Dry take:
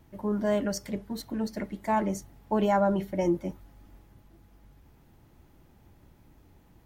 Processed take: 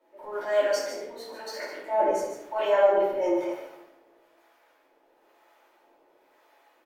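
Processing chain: inverse Chebyshev high-pass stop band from 170 Hz, stop band 50 dB; high shelf 3900 Hz -10.5 dB; transient shaper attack -7 dB, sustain +6 dB; harmonic tremolo 1 Hz, depth 70%, crossover 670 Hz; echo 0.147 s -8 dB; reverb RT60 0.70 s, pre-delay 3 ms, DRR -9 dB

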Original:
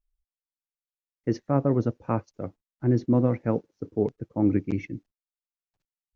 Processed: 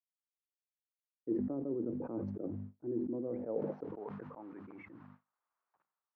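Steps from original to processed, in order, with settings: reverse; compressor 5:1, threshold -32 dBFS, peak gain reduction 14 dB; reverse; HPF 120 Hz; notches 50/100/150/200/250 Hz; modulation noise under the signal 21 dB; LPF 1600 Hz 12 dB/oct; gate with hold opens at -59 dBFS; band-pass sweep 340 Hz -> 1100 Hz, 3.15–4.16; sustainer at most 29 dB/s; gain +2.5 dB

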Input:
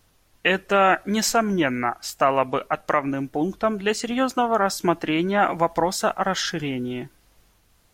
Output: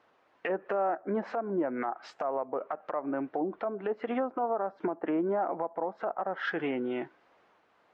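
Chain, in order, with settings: LPF 1600 Hz 12 dB/oct; treble ducked by the level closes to 750 Hz, closed at -19.5 dBFS; HPF 440 Hz 12 dB/oct; compressor, threshold -29 dBFS, peak gain reduction 10.5 dB; limiter -25.5 dBFS, peak gain reduction 10 dB; gain +4 dB

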